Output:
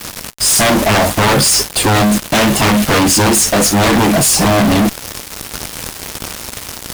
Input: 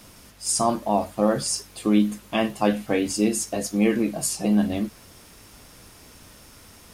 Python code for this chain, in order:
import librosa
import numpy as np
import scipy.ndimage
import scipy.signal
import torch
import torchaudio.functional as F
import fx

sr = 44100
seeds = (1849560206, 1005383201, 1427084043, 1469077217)

y = fx.cheby_harmonics(x, sr, harmonics=(3, 6, 7, 8), levels_db=(-19, -21, -11, -22), full_scale_db=-6.0)
y = fx.fuzz(y, sr, gain_db=46.0, gate_db=-41.0)
y = y * librosa.db_to_amplitude(3.5)